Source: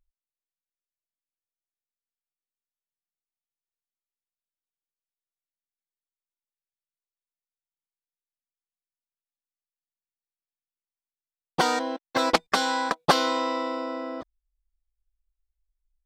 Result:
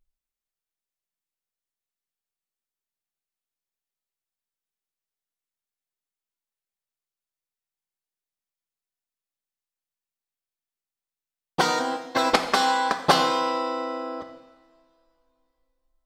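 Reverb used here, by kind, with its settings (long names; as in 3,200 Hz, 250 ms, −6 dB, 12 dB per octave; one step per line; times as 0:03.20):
coupled-rooms reverb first 0.99 s, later 3.3 s, from −22 dB, DRR 5.5 dB
level +1 dB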